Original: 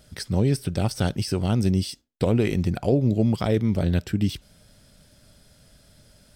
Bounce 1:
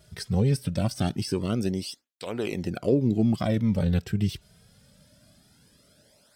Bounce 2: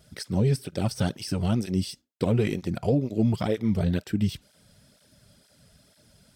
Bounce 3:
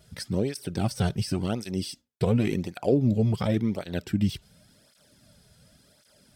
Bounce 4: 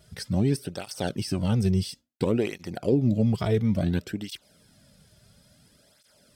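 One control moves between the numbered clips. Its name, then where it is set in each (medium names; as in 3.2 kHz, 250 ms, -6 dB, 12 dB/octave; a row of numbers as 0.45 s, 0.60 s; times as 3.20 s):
cancelling through-zero flanger, nulls at: 0.23 Hz, 2.1 Hz, 0.91 Hz, 0.58 Hz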